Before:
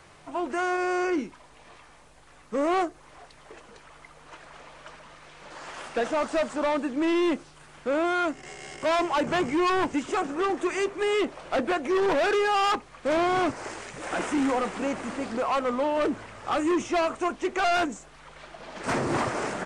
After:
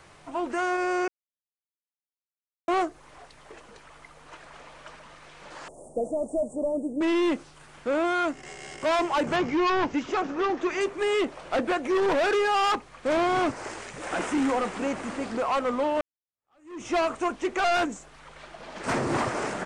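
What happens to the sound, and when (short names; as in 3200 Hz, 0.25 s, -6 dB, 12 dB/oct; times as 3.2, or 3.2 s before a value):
1.08–2.68 mute
5.68–7.01 elliptic band-stop 630–8400 Hz, stop band 50 dB
9.36–10.81 steep low-pass 6300 Hz
16.01–16.88 fade in exponential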